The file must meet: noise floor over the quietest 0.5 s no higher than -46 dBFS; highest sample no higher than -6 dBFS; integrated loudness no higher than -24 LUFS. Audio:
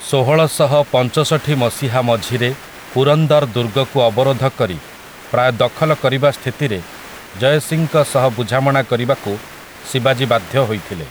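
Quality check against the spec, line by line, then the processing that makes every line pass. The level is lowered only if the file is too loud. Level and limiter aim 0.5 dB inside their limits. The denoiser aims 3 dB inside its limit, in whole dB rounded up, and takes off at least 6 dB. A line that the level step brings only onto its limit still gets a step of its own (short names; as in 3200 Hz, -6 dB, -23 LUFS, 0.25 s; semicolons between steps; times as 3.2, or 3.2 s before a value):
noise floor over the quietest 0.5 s -36 dBFS: fail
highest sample -2.0 dBFS: fail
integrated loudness -16.0 LUFS: fail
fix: denoiser 6 dB, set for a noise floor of -36 dBFS; gain -8.5 dB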